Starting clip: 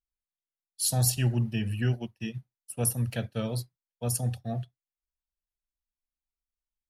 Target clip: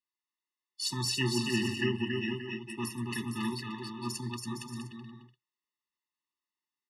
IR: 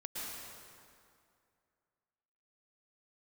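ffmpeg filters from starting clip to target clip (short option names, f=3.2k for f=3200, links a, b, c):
-af "highpass=370,lowpass=4.3k,aecho=1:1:280|462|580.3|657.2|707.2:0.631|0.398|0.251|0.158|0.1,afftfilt=real='re*eq(mod(floor(b*sr/1024/430),2),0)':imag='im*eq(mod(floor(b*sr/1024/430),2),0)':win_size=1024:overlap=0.75,volume=7.5dB"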